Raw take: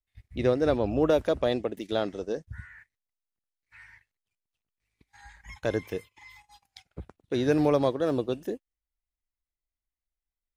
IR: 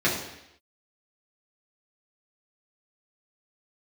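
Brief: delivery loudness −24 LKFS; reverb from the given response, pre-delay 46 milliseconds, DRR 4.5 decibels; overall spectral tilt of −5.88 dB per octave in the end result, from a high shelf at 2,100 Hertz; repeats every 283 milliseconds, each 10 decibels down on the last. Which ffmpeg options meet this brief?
-filter_complex "[0:a]highshelf=frequency=2100:gain=-3,aecho=1:1:283|566|849|1132:0.316|0.101|0.0324|0.0104,asplit=2[link_01][link_02];[1:a]atrim=start_sample=2205,adelay=46[link_03];[link_02][link_03]afir=irnorm=-1:irlink=0,volume=-19.5dB[link_04];[link_01][link_04]amix=inputs=2:normalize=0,volume=2dB"

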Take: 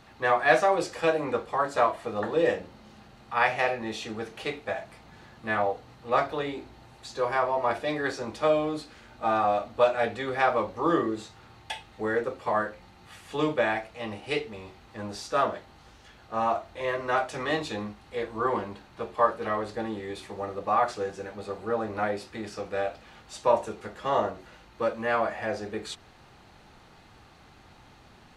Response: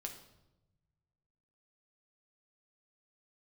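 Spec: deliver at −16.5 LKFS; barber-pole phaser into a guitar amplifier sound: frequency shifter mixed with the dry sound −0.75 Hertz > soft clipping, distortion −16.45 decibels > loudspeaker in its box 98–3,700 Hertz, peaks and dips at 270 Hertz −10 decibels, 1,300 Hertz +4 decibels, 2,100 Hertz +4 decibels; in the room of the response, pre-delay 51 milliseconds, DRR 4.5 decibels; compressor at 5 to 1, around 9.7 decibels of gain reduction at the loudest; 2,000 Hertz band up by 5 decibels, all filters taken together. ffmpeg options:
-filter_complex "[0:a]equalizer=frequency=2000:width_type=o:gain=3.5,acompressor=threshold=-25dB:ratio=5,asplit=2[link_01][link_02];[1:a]atrim=start_sample=2205,adelay=51[link_03];[link_02][link_03]afir=irnorm=-1:irlink=0,volume=-2dB[link_04];[link_01][link_04]amix=inputs=2:normalize=0,asplit=2[link_05][link_06];[link_06]afreqshift=-0.75[link_07];[link_05][link_07]amix=inputs=2:normalize=1,asoftclip=threshold=-24.5dB,highpass=98,equalizer=frequency=270:width_type=q:width=4:gain=-10,equalizer=frequency=1300:width_type=q:width=4:gain=4,equalizer=frequency=2100:width_type=q:width=4:gain=4,lowpass=frequency=3700:width=0.5412,lowpass=frequency=3700:width=1.3066,volume=18dB"

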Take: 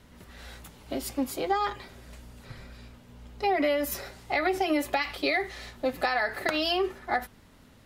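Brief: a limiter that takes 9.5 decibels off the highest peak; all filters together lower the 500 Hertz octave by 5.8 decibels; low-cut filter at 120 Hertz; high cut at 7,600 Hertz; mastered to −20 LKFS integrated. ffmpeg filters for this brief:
ffmpeg -i in.wav -af "highpass=120,lowpass=7600,equalizer=frequency=500:width_type=o:gain=-8,volume=13.5dB,alimiter=limit=-9.5dB:level=0:latency=1" out.wav

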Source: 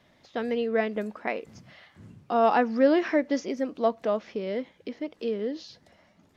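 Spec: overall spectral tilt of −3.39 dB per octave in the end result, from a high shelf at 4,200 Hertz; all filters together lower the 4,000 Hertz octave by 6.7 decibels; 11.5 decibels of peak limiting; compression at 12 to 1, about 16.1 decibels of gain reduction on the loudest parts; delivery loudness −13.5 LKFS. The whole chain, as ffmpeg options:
ffmpeg -i in.wav -af "equalizer=frequency=4000:width_type=o:gain=-5.5,highshelf=frequency=4200:gain=-7.5,acompressor=threshold=-32dB:ratio=12,volume=28.5dB,alimiter=limit=-4dB:level=0:latency=1" out.wav

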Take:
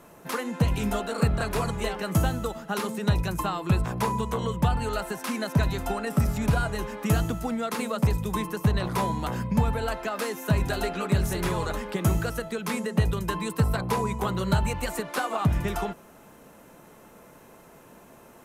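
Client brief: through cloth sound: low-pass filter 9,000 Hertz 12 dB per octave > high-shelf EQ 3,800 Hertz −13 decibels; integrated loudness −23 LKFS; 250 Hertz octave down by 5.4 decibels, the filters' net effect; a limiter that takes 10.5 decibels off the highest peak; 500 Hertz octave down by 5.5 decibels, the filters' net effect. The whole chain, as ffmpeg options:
ffmpeg -i in.wav -af "equalizer=frequency=250:width_type=o:gain=-7.5,equalizer=frequency=500:width_type=o:gain=-4.5,alimiter=limit=-23.5dB:level=0:latency=1,lowpass=9000,highshelf=frequency=3800:gain=-13,volume=11.5dB" out.wav

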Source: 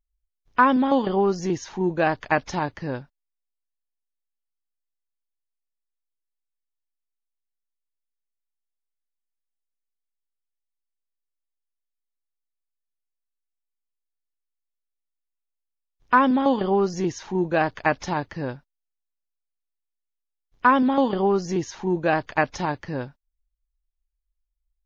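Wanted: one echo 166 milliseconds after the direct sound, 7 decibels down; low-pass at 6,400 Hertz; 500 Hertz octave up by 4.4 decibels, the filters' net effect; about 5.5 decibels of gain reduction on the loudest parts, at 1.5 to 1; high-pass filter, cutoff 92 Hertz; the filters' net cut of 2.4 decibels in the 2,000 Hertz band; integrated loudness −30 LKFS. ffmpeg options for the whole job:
ffmpeg -i in.wav -af "highpass=92,lowpass=6400,equalizer=frequency=500:width_type=o:gain=6,equalizer=frequency=2000:width_type=o:gain=-4,acompressor=threshold=-27dB:ratio=1.5,aecho=1:1:166:0.447,volume=-5dB" out.wav

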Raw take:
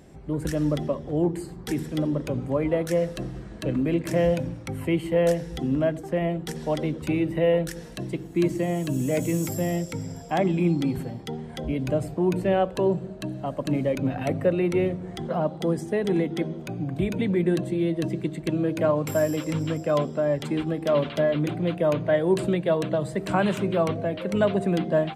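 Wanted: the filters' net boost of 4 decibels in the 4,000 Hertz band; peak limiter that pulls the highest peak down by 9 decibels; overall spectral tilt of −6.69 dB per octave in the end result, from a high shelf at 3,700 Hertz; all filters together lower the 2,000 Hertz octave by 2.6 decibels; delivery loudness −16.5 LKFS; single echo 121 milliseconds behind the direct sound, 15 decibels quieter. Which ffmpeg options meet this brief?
ffmpeg -i in.wav -af "equalizer=frequency=2000:width_type=o:gain=-6,highshelf=frequency=3700:gain=6.5,equalizer=frequency=4000:width_type=o:gain=3.5,alimiter=limit=-19.5dB:level=0:latency=1,aecho=1:1:121:0.178,volume=12.5dB" out.wav

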